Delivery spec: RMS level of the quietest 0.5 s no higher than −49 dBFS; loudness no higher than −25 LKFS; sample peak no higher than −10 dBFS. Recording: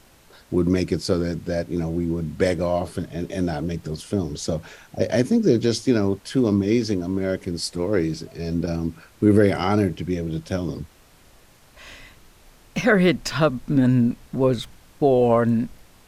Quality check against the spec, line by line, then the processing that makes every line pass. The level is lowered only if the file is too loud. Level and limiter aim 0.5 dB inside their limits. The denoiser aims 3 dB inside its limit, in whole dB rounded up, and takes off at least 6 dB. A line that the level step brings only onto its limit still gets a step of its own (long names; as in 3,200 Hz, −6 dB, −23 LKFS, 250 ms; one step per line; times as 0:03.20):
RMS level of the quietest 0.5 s −52 dBFS: in spec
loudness −22.5 LKFS: out of spec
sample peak −5.0 dBFS: out of spec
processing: level −3 dB
brickwall limiter −10.5 dBFS